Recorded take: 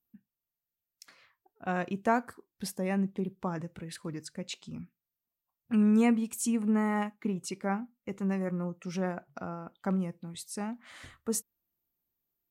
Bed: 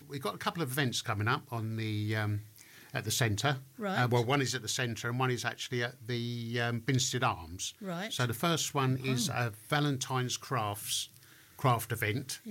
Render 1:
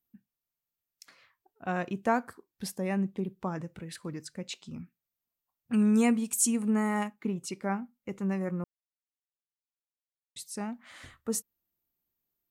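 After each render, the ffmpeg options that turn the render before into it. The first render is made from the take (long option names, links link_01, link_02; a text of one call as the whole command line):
ffmpeg -i in.wav -filter_complex "[0:a]asettb=1/sr,asplit=3[link_01][link_02][link_03];[link_01]atrim=end=5.734[link_04];[link_02]atrim=start=5.73:end=7.08,asetpts=PTS-STARTPTS,afade=type=in:duration=0.004:curve=qsin,afade=type=out:start_time=1.346:duration=0.004:curve=qsin,equalizer=frequency=9000:width_type=o:width=1.7:gain=9.5[link_05];[link_03]atrim=start=7.076[link_06];[link_04][link_05]acrossfade=duration=0.004:curve1=hsin:curve2=qsin[link_07];[link_07][link_06]acrossfade=duration=0.004:curve1=qsin:curve2=hsin,asplit=3[link_08][link_09][link_10];[link_08]atrim=end=8.64,asetpts=PTS-STARTPTS,afade=type=out:start_time=8.636:duration=0.004:curve=hsin[link_11];[link_09]atrim=start=8.64:end=10.36,asetpts=PTS-STARTPTS,volume=0[link_12];[link_10]atrim=start=10.36,asetpts=PTS-STARTPTS,afade=type=in:duration=0.004:curve=hsin[link_13];[link_11][link_12][link_13]concat=n=3:v=0:a=1" out.wav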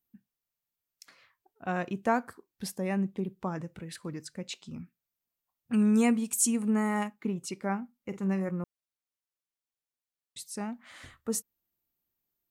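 ffmpeg -i in.wav -filter_complex "[0:a]asettb=1/sr,asplit=3[link_01][link_02][link_03];[link_01]atrim=end=7.964[link_04];[link_02]atrim=start=7.96:end=8.49,asetpts=PTS-STARTPTS,afade=type=in:duration=0.004:curve=qsin,afade=type=out:start_time=0.526:duration=0.004:curve=qsin,asplit=2[link_05][link_06];[link_06]adelay=47,volume=-12dB[link_07];[link_05][link_07]amix=inputs=2:normalize=0,atrim=end_sample=23373[link_08];[link_03]atrim=start=8.486[link_09];[link_04][link_08]acrossfade=duration=0.004:curve1=hsin:curve2=qsin[link_10];[link_10][link_09]acrossfade=duration=0.004:curve1=qsin:curve2=hsin" out.wav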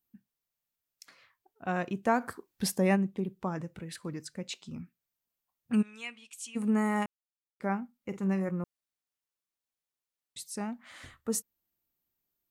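ffmpeg -i in.wav -filter_complex "[0:a]asplit=3[link_01][link_02][link_03];[link_01]afade=type=out:start_time=2.2:duration=0.02[link_04];[link_02]acontrast=62,afade=type=in:start_time=2.2:duration=0.02,afade=type=out:start_time=2.95:duration=0.02[link_05];[link_03]afade=type=in:start_time=2.95:duration=0.02[link_06];[link_04][link_05][link_06]amix=inputs=3:normalize=0,asplit=3[link_07][link_08][link_09];[link_07]afade=type=out:start_time=5.81:duration=0.02[link_10];[link_08]bandpass=frequency=2900:width_type=q:width=2.5,afade=type=in:start_time=5.81:duration=0.02,afade=type=out:start_time=6.55:duration=0.02[link_11];[link_09]afade=type=in:start_time=6.55:duration=0.02[link_12];[link_10][link_11][link_12]amix=inputs=3:normalize=0,asplit=3[link_13][link_14][link_15];[link_13]atrim=end=7.06,asetpts=PTS-STARTPTS,afade=type=out:start_time=7.056:duration=0.004:curve=hsin[link_16];[link_14]atrim=start=7.06:end=7.6,asetpts=PTS-STARTPTS,volume=0[link_17];[link_15]atrim=start=7.6,asetpts=PTS-STARTPTS,afade=type=in:duration=0.004:curve=hsin[link_18];[link_16][link_17][link_18]concat=n=3:v=0:a=1" out.wav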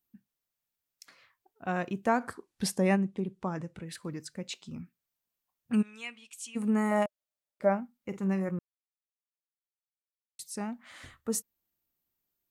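ffmpeg -i in.wav -filter_complex "[0:a]asettb=1/sr,asplit=3[link_01][link_02][link_03];[link_01]atrim=end=2.104[link_04];[link_02]atrim=start=2.1:end=3.87,asetpts=PTS-STARTPTS,afade=type=in:duration=0.004:curve=qsin,afade=type=out:start_time=1.766:duration=0.004:curve=qsin,lowpass=frequency=11000:width=0.5412,lowpass=frequency=11000:width=1.3066[link_05];[link_03]atrim=start=3.866[link_06];[link_04][link_05]acrossfade=duration=0.004:curve1=hsin:curve2=qsin[link_07];[link_07][link_06]acrossfade=duration=0.004:curve1=qsin:curve2=hsin,asettb=1/sr,asplit=3[link_08][link_09][link_10];[link_08]atrim=end=6.914[link_11];[link_09]atrim=start=6.91:end=7.8,asetpts=PTS-STARTPTS,afade=type=in:duration=0.004:curve=qsin,afade=type=out:start_time=0.886:duration=0.004:curve=qsin,equalizer=frequency=610:width_type=o:width=0.32:gain=14[link_12];[link_10]atrim=start=7.796[link_13];[link_11][link_12]acrossfade=duration=0.004:curve1=hsin:curve2=qsin[link_14];[link_14][link_13]acrossfade=duration=0.004:curve1=qsin:curve2=hsin,asplit=3[link_15][link_16][link_17];[link_15]atrim=end=8.59,asetpts=PTS-STARTPTS,afade=type=out:start_time=8.586:duration=0.004:curve=hsin[link_18];[link_16]atrim=start=8.59:end=10.39,asetpts=PTS-STARTPTS,volume=0[link_19];[link_17]atrim=start=10.39,asetpts=PTS-STARTPTS,afade=type=in:duration=0.004:curve=hsin[link_20];[link_18][link_19][link_20]concat=n=3:v=0:a=1" out.wav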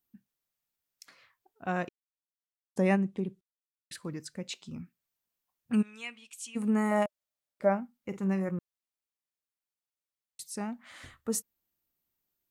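ffmpeg -i in.wav -filter_complex "[0:a]asplit=5[link_01][link_02][link_03][link_04][link_05];[link_01]atrim=end=1.89,asetpts=PTS-STARTPTS,afade=type=out:start_time=1.886:duration=0.004:curve=hsin[link_06];[link_02]atrim=start=1.89:end=2.76,asetpts=PTS-STARTPTS,volume=0[link_07];[link_03]atrim=start=2.76:end=3.41,asetpts=PTS-STARTPTS,afade=type=in:duration=0.004:curve=hsin,afade=type=out:start_time=0.646:duration=0.004:curve=hsin[link_08];[link_04]atrim=start=3.41:end=3.91,asetpts=PTS-STARTPTS,volume=0[link_09];[link_05]atrim=start=3.91,asetpts=PTS-STARTPTS,afade=type=in:duration=0.004:curve=hsin[link_10];[link_06][link_07][link_08][link_09][link_10]concat=n=5:v=0:a=1" out.wav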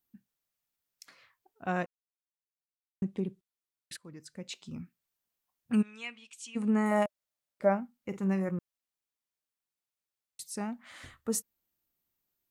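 ffmpeg -i in.wav -filter_complex "[0:a]asettb=1/sr,asplit=3[link_01][link_02][link_03];[link_01]atrim=end=5.824[link_04];[link_02]atrim=start=5.82:end=6.86,asetpts=PTS-STARTPTS,afade=type=in:duration=0.004:curve=qsin,afade=type=out:start_time=1.036:duration=0.004:curve=qsin,lowpass=7000[link_05];[link_03]atrim=start=6.856[link_06];[link_04][link_05]acrossfade=duration=0.004:curve1=hsin:curve2=qsin[link_07];[link_07][link_06]acrossfade=duration=0.004:curve1=qsin:curve2=hsin,asplit=4[link_08][link_09][link_10][link_11];[link_08]atrim=end=1.86,asetpts=PTS-STARTPTS,afade=type=out:start_time=1.856:duration=0.004:curve=hsin[link_12];[link_09]atrim=start=1.86:end=3.02,asetpts=PTS-STARTPTS,volume=0[link_13];[link_10]atrim=start=3.02:end=3.97,asetpts=PTS-STARTPTS,afade=type=in:duration=0.004:curve=hsin,afade=type=out:start_time=0.946:duration=0.004:curve=hsin:silence=0.158489[link_14];[link_11]atrim=start=3.97,asetpts=PTS-STARTPTS,afade=type=in:duration=0.77:silence=0.158489[link_15];[link_12][link_13][link_14][link_15]concat=n=4:v=0:a=1" out.wav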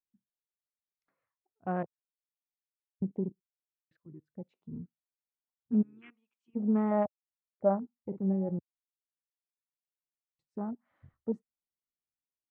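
ffmpeg -i in.wav -af "afwtdn=0.0141,lowpass=1000" out.wav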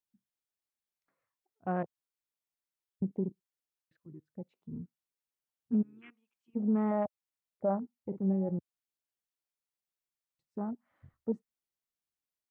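ffmpeg -i in.wav -af "alimiter=limit=-21dB:level=0:latency=1" out.wav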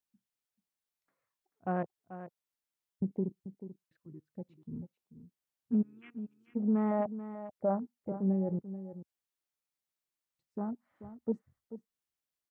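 ffmpeg -i in.wav -af "aecho=1:1:437:0.237" out.wav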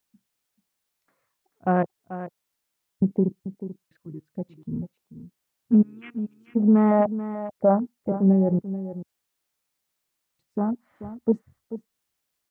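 ffmpeg -i in.wav -af "volume=11.5dB" out.wav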